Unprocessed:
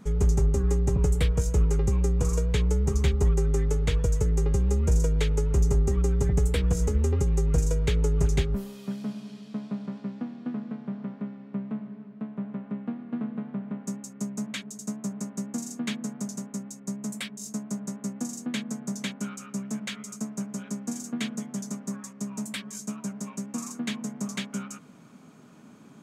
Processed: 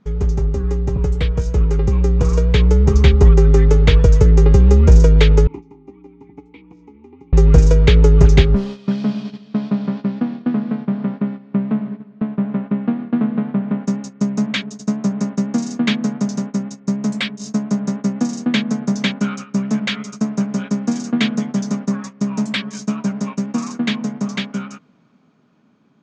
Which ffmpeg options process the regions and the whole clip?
-filter_complex "[0:a]asettb=1/sr,asplit=3[a][b][c];[a]atrim=end=5.474[d];[b]atrim=start=5.47:end=7.33,asetpts=PTS-STARTPTS,afade=t=in:d=0.004:c=qsin,afade=t=out:st=1.856:d=0.004:c=qsin,asplit=3[e][f][g];[e]bandpass=f=300:t=q:w=8,volume=0dB[h];[f]bandpass=f=870:t=q:w=8,volume=-6dB[i];[g]bandpass=f=2.24k:t=q:w=8,volume=-9dB[j];[h][i][j]amix=inputs=3:normalize=0,lowshelf=f=120:g=-10.5[k];[c]atrim=start=7.326[l];[d][k]acrossfade=d=0.004:c1=hsin:c2=qsin[m];[m][l]acrossfade=d=0.004:c1=qsin:c2=hsin,agate=range=-11dB:threshold=-40dB:ratio=16:detection=peak,lowpass=f=5.2k:w=0.5412,lowpass=f=5.2k:w=1.3066,dynaudnorm=f=430:g=11:m=10dB,volume=4dB"

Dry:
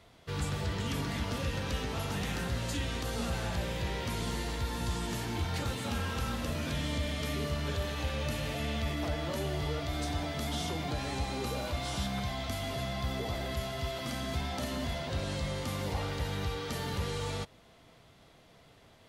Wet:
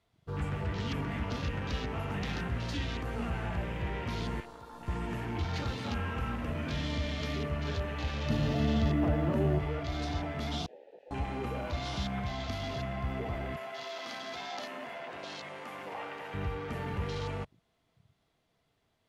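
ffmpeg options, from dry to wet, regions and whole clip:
-filter_complex "[0:a]asettb=1/sr,asplit=3[a][b][c];[a]atrim=end=4.404[d];[b]atrim=start=4.4:end=4.88,asetpts=PTS-STARTPTS,afade=t=in:d=0.004:c=qsin,afade=t=out:st=0.476:d=0.004:c=qsin,highpass=f=640:p=1,aeval=exprs='(tanh(44.7*val(0)+0.65)-tanh(0.65))/44.7':c=same[e];[c]atrim=start=4.876[f];[d][e]acrossfade=d=0.004:c1=hsin:c2=qsin[g];[g][f]acrossfade=d=0.004:c1=qsin:c2=hsin,asettb=1/sr,asplit=3[h][i][j];[h]atrim=end=8.304[k];[i]atrim=start=8.3:end=9.59,asetpts=PTS-STARTPTS,afade=t=in:d=0.004:c=qsin,afade=t=out:st=1.286:d=0.004:c=qsin,equalizer=f=200:t=o:w=2.8:g=9.5,bandreject=f=2.3k:w=5.9,acrusher=bits=7:mix=0:aa=0.5[l];[j]atrim=start=9.586[m];[k][l]acrossfade=d=0.004:c1=hsin:c2=qsin[n];[n][m]acrossfade=d=0.004:c1=qsin:c2=hsin,asettb=1/sr,asplit=3[o][p][q];[o]atrim=end=10.664[r];[p]atrim=start=10.66:end=11.11,asetpts=PTS-STARTPTS,afade=t=in:d=0.004:c=qsin,afade=t=out:st=0.446:d=0.004:c=qsin,aeval=exprs='abs(val(0))':c=same,asplit=3[s][t][u];[s]bandpass=f=530:t=q:w=8,volume=0dB[v];[t]bandpass=f=1.84k:t=q:w=8,volume=-6dB[w];[u]bandpass=f=2.48k:t=q:w=8,volume=-9dB[x];[v][w][x]amix=inputs=3:normalize=0,asplit=2[y][z];[z]adelay=16,volume=-6.5dB[aa];[y][aa]amix=inputs=2:normalize=0,atrim=end_sample=19845[ab];[q]atrim=start=11.106[ac];[r][ab]acrossfade=d=0.004:c1=hsin:c2=qsin[ad];[ad][ac]acrossfade=d=0.004:c1=qsin:c2=hsin,asettb=1/sr,asplit=3[ae][af][ag];[ae]atrim=end=13.564[ah];[af]atrim=start=13.56:end=16.34,asetpts=PTS-STARTPTS,afade=t=in:d=0.004:c=qsin,afade=t=out:st=2.776:d=0.004:c=qsin,highpass=450,asplit=2[ai][aj];[aj]adelay=14,volume=-13.5dB[ak];[ai][ak]amix=inputs=2:normalize=0,atrim=end_sample=122598[al];[ag]atrim=start=16.336[am];[ah][al]acrossfade=d=0.004:c1=hsin:c2=qsin[an];[an][am]acrossfade=d=0.004:c1=qsin:c2=hsin,bandreject=f=540:w=13,afwtdn=0.00708"

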